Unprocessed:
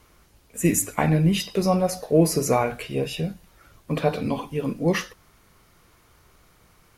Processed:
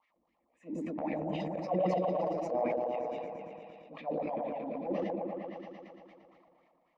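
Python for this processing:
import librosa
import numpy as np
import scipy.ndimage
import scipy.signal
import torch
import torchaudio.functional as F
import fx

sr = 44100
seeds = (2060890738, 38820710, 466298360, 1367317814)

p1 = fx.wah_lfo(x, sr, hz=3.8, low_hz=330.0, high_hz=2100.0, q=6.7)
p2 = p1 + fx.echo_opening(p1, sr, ms=115, hz=400, octaves=1, feedback_pct=70, wet_db=0, dry=0)
p3 = fx.dynamic_eq(p2, sr, hz=610.0, q=2.2, threshold_db=-44.0, ratio=4.0, max_db=5)
p4 = fx.fixed_phaser(p3, sr, hz=400.0, stages=6)
p5 = fx.transient(p4, sr, attack_db=-7, sustain_db=8)
p6 = scipy.signal.sosfilt(scipy.signal.butter(2, 3900.0, 'lowpass', fs=sr, output='sos'), p5)
y = fx.sustainer(p6, sr, db_per_s=23.0)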